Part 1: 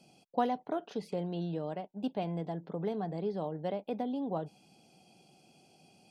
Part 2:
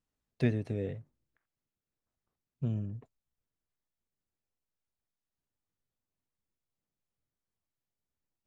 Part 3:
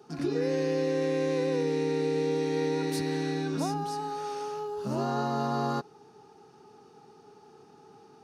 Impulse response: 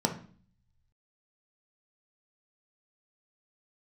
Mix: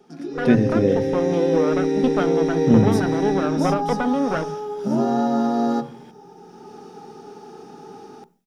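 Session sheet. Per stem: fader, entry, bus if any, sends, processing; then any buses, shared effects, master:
0.0 dB, 0.00 s, send -20 dB, minimum comb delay 0.57 ms; tone controls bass -5 dB, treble -12 dB
+2.0 dB, 0.05 s, send -15.5 dB, dry
-3.0 dB, 0.00 s, send -18.5 dB, HPF 89 Hz 24 dB/oct; auto duck -12 dB, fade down 0.60 s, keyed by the first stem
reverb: on, RT60 0.45 s, pre-delay 3 ms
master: AGC gain up to 14 dB

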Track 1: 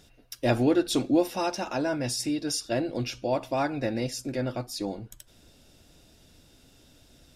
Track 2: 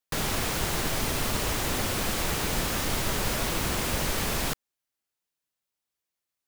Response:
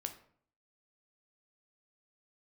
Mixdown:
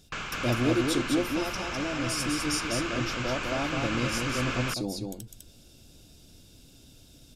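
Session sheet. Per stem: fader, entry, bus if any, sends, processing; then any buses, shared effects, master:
-0.5 dB, 0.00 s, no send, echo send -4 dB, bell 1000 Hz -8.5 dB 2.6 oct
-7.5 dB, 0.00 s, no send, echo send -3.5 dB, steep low-pass 7600 Hz 72 dB/oct; band shelf 1800 Hz +12 dB; auto duck -11 dB, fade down 0.45 s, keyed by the first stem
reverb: off
echo: echo 0.203 s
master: notch 1900 Hz, Q 6.2; vocal rider within 4 dB 2 s

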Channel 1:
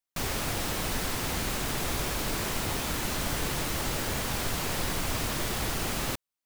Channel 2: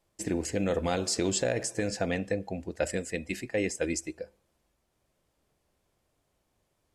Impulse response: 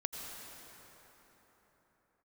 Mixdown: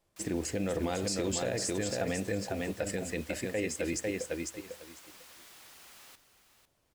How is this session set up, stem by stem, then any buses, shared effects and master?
-19.5 dB, 0.00 s, no send, echo send -11 dB, HPF 1400 Hz 6 dB/oct
-1.0 dB, 0.00 s, no send, echo send -5 dB, dry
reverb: off
echo: feedback echo 0.499 s, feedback 16%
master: limiter -22.5 dBFS, peak gain reduction 7.5 dB

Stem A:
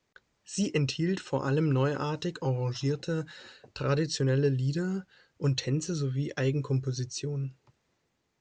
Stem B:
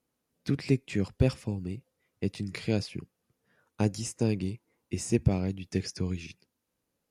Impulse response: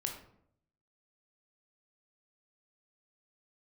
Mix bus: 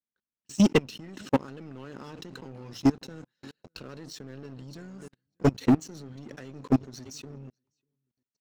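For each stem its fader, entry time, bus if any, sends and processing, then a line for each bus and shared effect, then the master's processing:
-5.0 dB, 0.00 s, send -20 dB, echo send -19 dB, bell 230 Hz +14.5 dB 0.59 oct; harmonic-percussive split percussive +8 dB
-15.0 dB, 0.00 s, no send, no echo send, compressor 12:1, threshold -29 dBFS, peak gain reduction 13.5 dB; auto duck -6 dB, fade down 0.65 s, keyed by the first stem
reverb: on, RT60 0.70 s, pre-delay 16 ms
echo: feedback echo 0.595 s, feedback 17%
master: level quantiser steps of 22 dB; sample leveller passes 3; upward expander 1.5:1, over -36 dBFS

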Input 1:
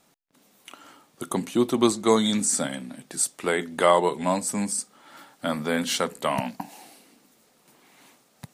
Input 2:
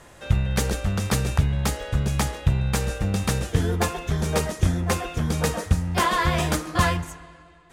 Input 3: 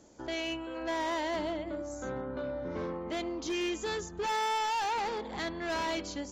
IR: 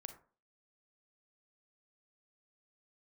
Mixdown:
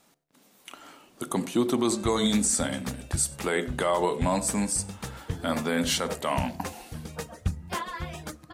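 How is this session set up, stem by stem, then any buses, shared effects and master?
7.08 s -2 dB -> 7.44 s -14.5 dB, 0.00 s, send -4.5 dB, echo send -22.5 dB, dry
+1.5 dB, 1.75 s, send -21 dB, no echo send, reverb removal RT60 0.76 s; upward expander 1.5:1, over -27 dBFS; auto duck -11 dB, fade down 0.95 s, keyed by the first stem
-19.5 dB, 0.55 s, no send, no echo send, whisperiser; compressor, threshold -35 dBFS, peak gain reduction 8.5 dB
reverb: on, RT60 0.40 s, pre-delay 32 ms
echo: echo 95 ms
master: de-hum 73.42 Hz, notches 10; limiter -14.5 dBFS, peak gain reduction 9 dB

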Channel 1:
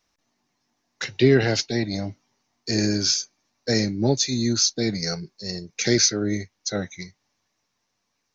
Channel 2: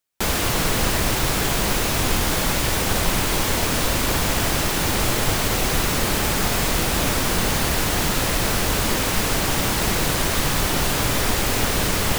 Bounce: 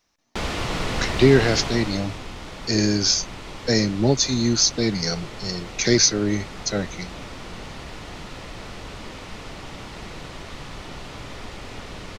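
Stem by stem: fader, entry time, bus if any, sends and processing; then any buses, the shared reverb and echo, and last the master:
+2.0 dB, 0.00 s, no send, dry
1.56 s -4 dB -> 2.25 s -14.5 dB, 0.15 s, no send, LPF 4700 Hz 12 dB/oct; notch 1600 Hz, Q 14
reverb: off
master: dry

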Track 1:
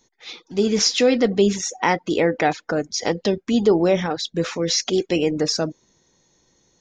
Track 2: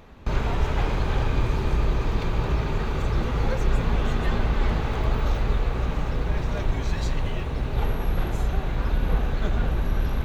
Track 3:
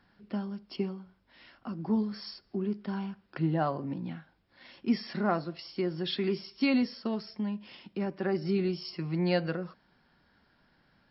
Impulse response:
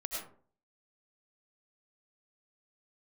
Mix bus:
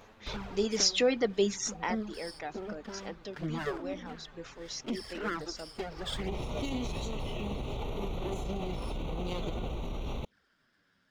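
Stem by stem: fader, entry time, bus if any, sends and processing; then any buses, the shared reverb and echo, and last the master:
1.67 s -7 dB -> 2.04 s -19 dB, 0.00 s, no bus, no send, reverb removal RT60 0.87 s
+2.0 dB, 0.00 s, bus A, no send, auto duck -24 dB, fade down 0.80 s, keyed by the first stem
+1.0 dB, 0.00 s, bus A, no send, minimum comb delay 0.59 ms
bus A: 0.0 dB, envelope flanger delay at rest 11.6 ms, full sweep at -21 dBFS; limiter -21 dBFS, peak gain reduction 12.5 dB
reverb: off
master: low shelf 220 Hz -10 dB

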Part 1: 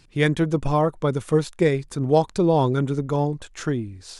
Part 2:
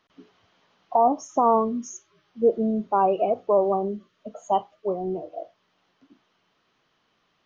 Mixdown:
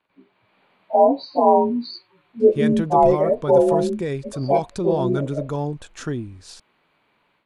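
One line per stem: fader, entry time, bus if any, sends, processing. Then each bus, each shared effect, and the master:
-10.5 dB, 2.40 s, no send, notch 2100 Hz; limiter -15.5 dBFS, peak gain reduction 9 dB
-2.0 dB, 0.00 s, no send, inharmonic rescaling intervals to 89%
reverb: off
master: AGC gain up to 9 dB

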